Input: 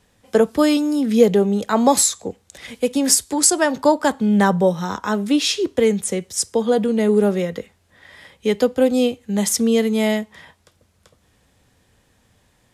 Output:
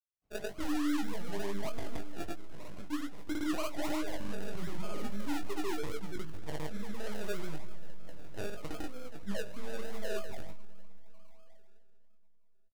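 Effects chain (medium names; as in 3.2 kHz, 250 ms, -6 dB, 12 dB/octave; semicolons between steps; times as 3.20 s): compression 12:1, threshold -25 dBFS, peak gain reduction 18.5 dB; gate -47 dBFS, range -47 dB; pitch-class resonator D#, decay 0.16 s; LPC vocoder at 8 kHz pitch kept; treble shelf 2.3 kHz -11 dB; thinning echo 199 ms, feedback 46%, high-pass 830 Hz, level -14.5 dB; reverberation RT60 4.0 s, pre-delay 70 ms, DRR 17.5 dB; dynamic bell 190 Hz, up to -5 dB, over -55 dBFS, Q 1.6; decimation with a swept rate 33×, swing 60% 3.2 Hz; peak limiter -37 dBFS, peak gain reduction 11 dB; granulator 100 ms, grains 20 per s, pitch spread up and down by 0 st; doubling 20 ms -5.5 dB; trim +10.5 dB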